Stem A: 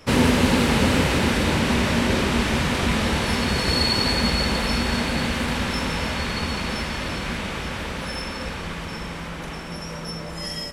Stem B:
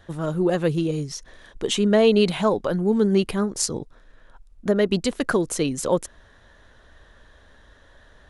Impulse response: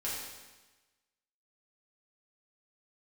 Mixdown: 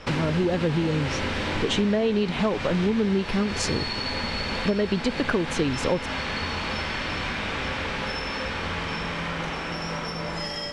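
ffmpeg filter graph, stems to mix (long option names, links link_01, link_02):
-filter_complex "[0:a]lowshelf=frequency=310:gain=-11,acompressor=threshold=-33dB:ratio=6,volume=3dB,asplit=2[link_01][link_02];[link_02]volume=-5dB[link_03];[1:a]volume=1.5dB[link_04];[2:a]atrim=start_sample=2205[link_05];[link_03][link_05]afir=irnorm=-1:irlink=0[link_06];[link_01][link_04][link_06]amix=inputs=3:normalize=0,lowpass=4900,lowshelf=frequency=200:gain=6,acompressor=threshold=-20dB:ratio=6"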